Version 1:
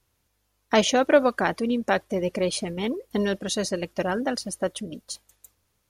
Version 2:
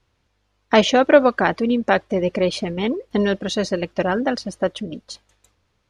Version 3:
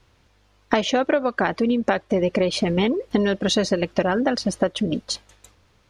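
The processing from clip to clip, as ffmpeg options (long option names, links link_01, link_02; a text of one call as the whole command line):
ffmpeg -i in.wav -af "lowpass=4300,volume=5.5dB" out.wav
ffmpeg -i in.wav -af "acompressor=threshold=-25dB:ratio=16,volume=8.5dB" out.wav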